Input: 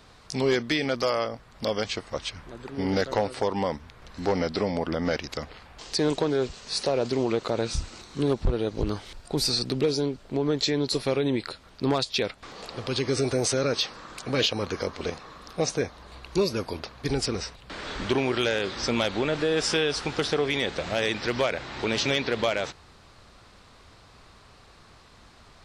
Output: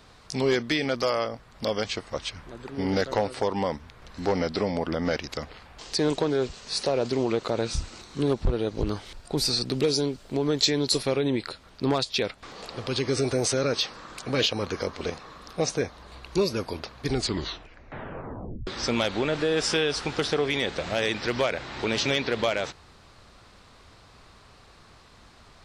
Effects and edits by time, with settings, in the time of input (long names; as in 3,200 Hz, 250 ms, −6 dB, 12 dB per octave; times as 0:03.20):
0:09.73–0:11.03: high-shelf EQ 4,400 Hz +9 dB
0:17.08: tape stop 1.59 s